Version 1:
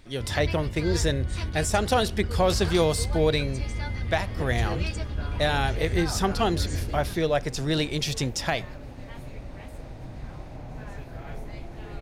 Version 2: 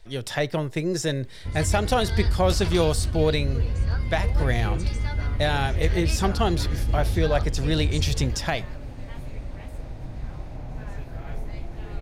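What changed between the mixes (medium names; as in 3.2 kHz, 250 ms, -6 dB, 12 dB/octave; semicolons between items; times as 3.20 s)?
first sound: entry +1.25 s; master: add bass shelf 93 Hz +7.5 dB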